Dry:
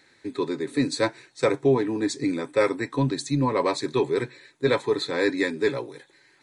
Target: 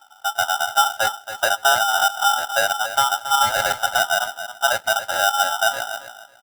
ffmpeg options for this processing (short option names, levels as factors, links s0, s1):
-af "asuperstop=centerf=1700:order=4:qfactor=0.91,equalizer=f=290:w=0.89:g=14.5,acompressor=threshold=0.00224:ratio=1.5,afwtdn=0.00631,aecho=1:1:276|552|828:0.282|0.0592|0.0124,aeval=exprs='val(0)*sgn(sin(2*PI*1100*n/s))':c=same,volume=2.66"